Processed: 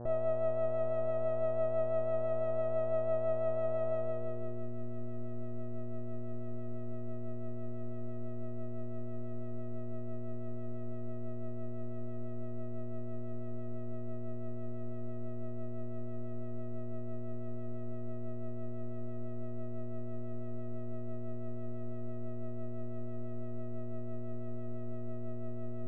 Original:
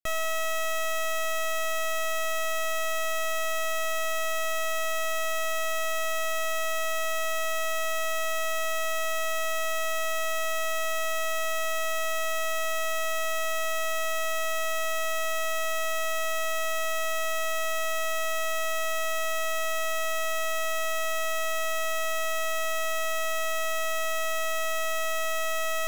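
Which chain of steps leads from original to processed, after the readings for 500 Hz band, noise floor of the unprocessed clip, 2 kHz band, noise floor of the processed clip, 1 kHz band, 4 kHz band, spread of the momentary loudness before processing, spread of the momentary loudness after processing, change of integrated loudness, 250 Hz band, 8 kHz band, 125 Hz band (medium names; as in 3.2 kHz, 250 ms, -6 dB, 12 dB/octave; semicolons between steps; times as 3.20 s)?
-5.5 dB, -27 dBFS, -32.0 dB, -35 dBFS, -18.0 dB, under -40 dB, 0 LU, 10 LU, -11.0 dB, +16.5 dB, under -40 dB, no reading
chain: peak limiter -38.5 dBFS, peak gain reduction 11.5 dB; rotary cabinet horn 6 Hz; mains buzz 120 Hz, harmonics 15, -54 dBFS -5 dB/octave; low-pass sweep 620 Hz -> 310 Hz, 3.93–4.72 s; trim +9 dB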